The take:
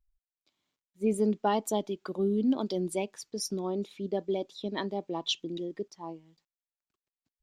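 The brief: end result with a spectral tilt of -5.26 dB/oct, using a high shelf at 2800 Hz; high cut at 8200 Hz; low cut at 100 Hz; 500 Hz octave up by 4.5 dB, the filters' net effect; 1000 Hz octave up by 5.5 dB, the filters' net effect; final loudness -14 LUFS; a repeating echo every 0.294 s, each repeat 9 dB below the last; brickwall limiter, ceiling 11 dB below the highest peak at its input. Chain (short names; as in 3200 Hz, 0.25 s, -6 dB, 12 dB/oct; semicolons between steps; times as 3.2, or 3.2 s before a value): HPF 100 Hz; LPF 8200 Hz; bell 500 Hz +5 dB; bell 1000 Hz +5.5 dB; high shelf 2800 Hz -3.5 dB; limiter -21.5 dBFS; feedback echo 0.294 s, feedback 35%, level -9 dB; gain +18 dB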